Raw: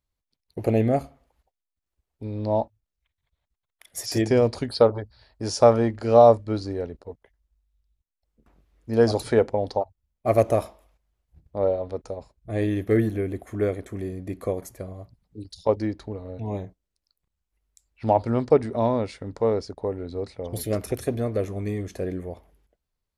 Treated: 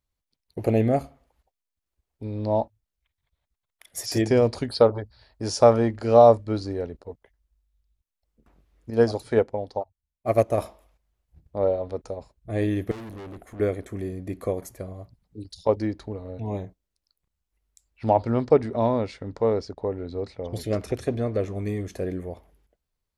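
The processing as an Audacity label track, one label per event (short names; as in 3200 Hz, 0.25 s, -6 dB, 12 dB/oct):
8.900000	10.580000	upward expander, over -34 dBFS
12.910000	13.600000	tube stage drive 37 dB, bias 0.6
18.090000	21.550000	LPF 6700 Hz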